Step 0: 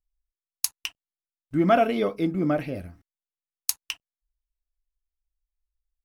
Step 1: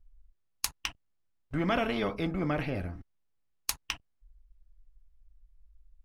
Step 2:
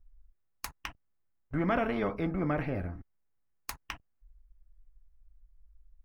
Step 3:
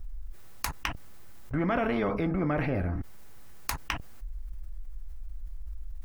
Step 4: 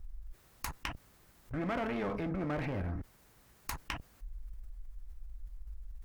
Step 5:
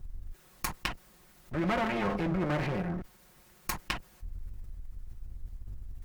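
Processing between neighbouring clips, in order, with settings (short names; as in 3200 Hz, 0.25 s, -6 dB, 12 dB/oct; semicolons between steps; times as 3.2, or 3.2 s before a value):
RIAA curve playback; spectral compressor 2:1; gain -2.5 dB
band shelf 5800 Hz -11 dB 2.5 oct
fast leveller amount 70%
one-sided clip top -28 dBFS; gain -5.5 dB
minimum comb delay 5.5 ms; gain +5.5 dB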